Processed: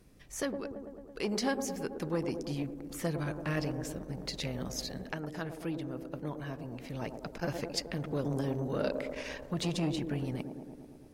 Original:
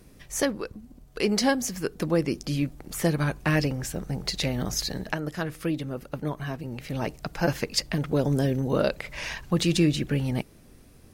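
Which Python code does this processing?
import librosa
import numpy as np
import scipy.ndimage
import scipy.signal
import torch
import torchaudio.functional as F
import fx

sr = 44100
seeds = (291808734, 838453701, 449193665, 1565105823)

y = fx.high_shelf(x, sr, hz=11000.0, db=-4.5)
y = fx.echo_wet_bandpass(y, sr, ms=110, feedback_pct=72, hz=430.0, wet_db=-6)
y = fx.transformer_sat(y, sr, knee_hz=490.0)
y = y * 10.0 ** (-8.0 / 20.0)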